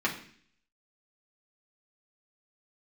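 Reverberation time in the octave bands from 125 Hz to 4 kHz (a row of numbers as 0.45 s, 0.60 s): 0.70 s, 0.70 s, 0.55 s, 0.50 s, 0.65 s, 0.65 s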